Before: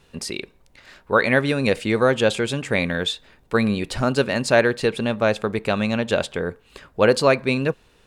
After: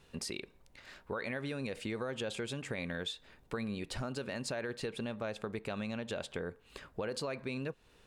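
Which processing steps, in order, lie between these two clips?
limiter -13 dBFS, peak gain reduction 9 dB; compressor 3:1, threshold -31 dBFS, peak gain reduction 10 dB; gain -6.5 dB

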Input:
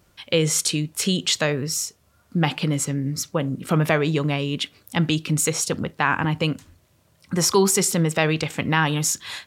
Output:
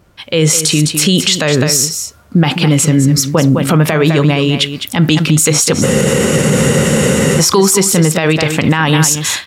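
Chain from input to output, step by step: AGC gain up to 10 dB; on a send: echo 0.206 s -11 dB; on the sum: spectral freeze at 5.85, 1.54 s; maximiser +12 dB; mismatched tape noise reduction decoder only; gain -1 dB

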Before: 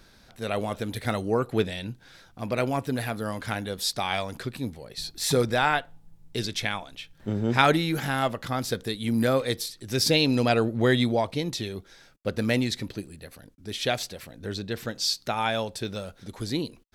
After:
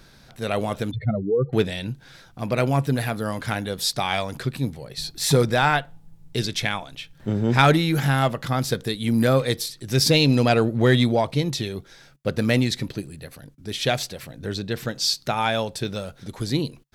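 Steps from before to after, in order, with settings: 0.91–1.53 spectral contrast raised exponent 3.1; bell 140 Hz +9.5 dB 0.26 oct; in parallel at -5.5 dB: hard clip -16 dBFS, distortion -16 dB

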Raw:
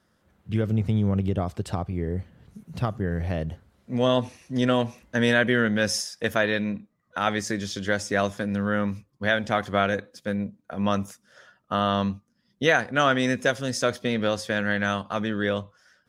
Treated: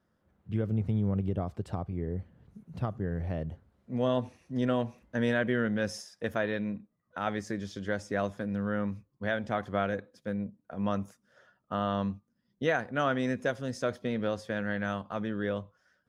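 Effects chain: high shelf 2000 Hz -10.5 dB; gain -5.5 dB

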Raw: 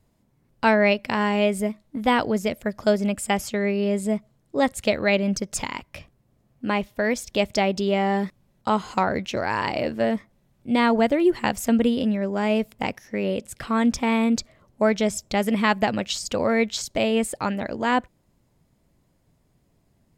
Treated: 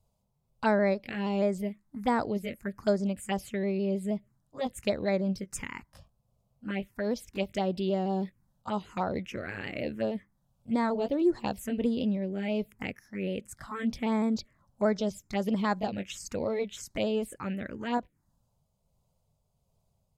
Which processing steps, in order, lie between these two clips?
repeated pitch sweeps -1 st, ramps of 0.158 s; envelope phaser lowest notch 300 Hz, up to 2900 Hz, full sweep at -17 dBFS; gain -5.5 dB

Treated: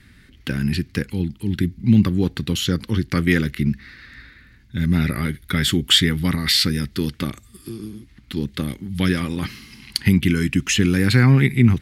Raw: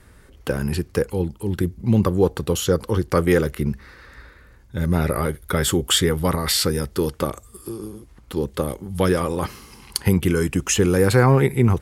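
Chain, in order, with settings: graphic EQ 125/250/500/1000/2000/4000/8000 Hz +5/+10/-11/-7/+10/+9/-3 dB; gain -3.5 dB

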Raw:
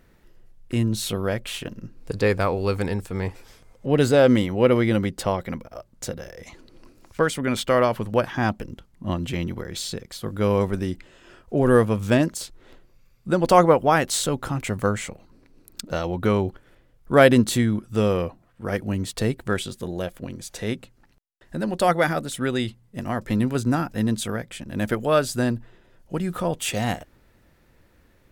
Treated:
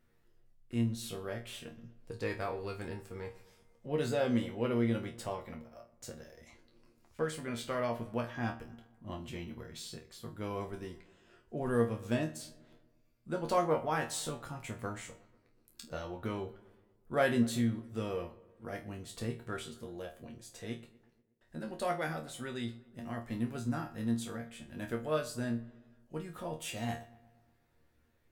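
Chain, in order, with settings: resonator bank D#2 fifth, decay 0.25 s; darkening echo 0.121 s, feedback 58%, low-pass 2600 Hz, level -19 dB; gain -4.5 dB

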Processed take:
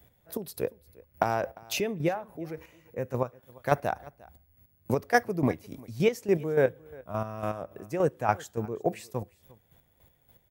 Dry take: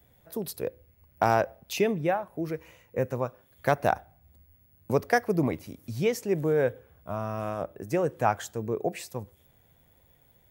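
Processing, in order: chopper 3.5 Hz, depth 60%, duty 30%; echo 0.351 s -23 dB; gain +2.5 dB

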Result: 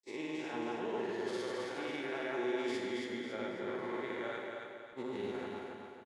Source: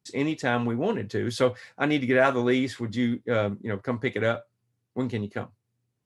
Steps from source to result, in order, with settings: time blur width 0.166 s; weighting filter A; gate with hold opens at -41 dBFS; high shelf 7000 Hz +6 dB; reverse; compressor, threshold -41 dBFS, peak gain reduction 18.5 dB; reverse; small resonant body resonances 370/860 Hz, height 11 dB, ringing for 45 ms; grains, grains 20/s, pitch spread up and down by 0 st; feedback echo 0.273 s, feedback 43%, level -4 dB; on a send at -5 dB: reverb RT60 1.0 s, pre-delay 38 ms; on the sum: gain +1 dB

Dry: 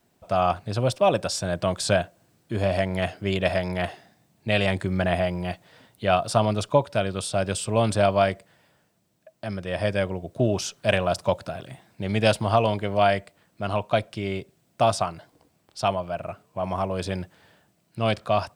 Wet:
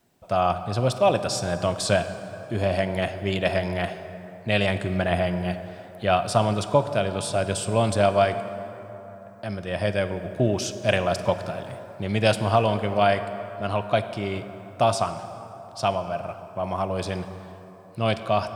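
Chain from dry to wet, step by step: plate-style reverb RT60 3.8 s, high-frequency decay 0.45×, DRR 9.5 dB

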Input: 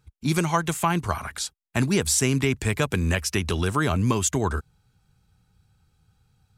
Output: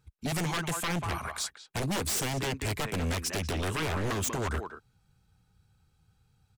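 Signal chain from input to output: speakerphone echo 0.19 s, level -9 dB; wavefolder -21.5 dBFS; gain -3.5 dB

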